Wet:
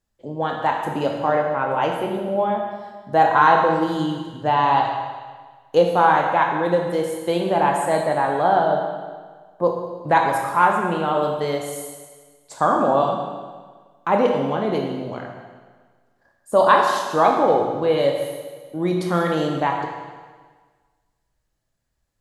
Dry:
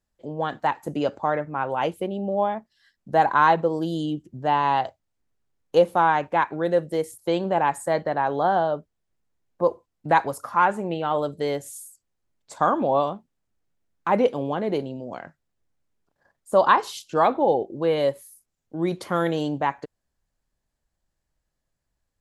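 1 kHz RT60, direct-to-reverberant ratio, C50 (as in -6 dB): 1.5 s, 1.0 dB, 3.0 dB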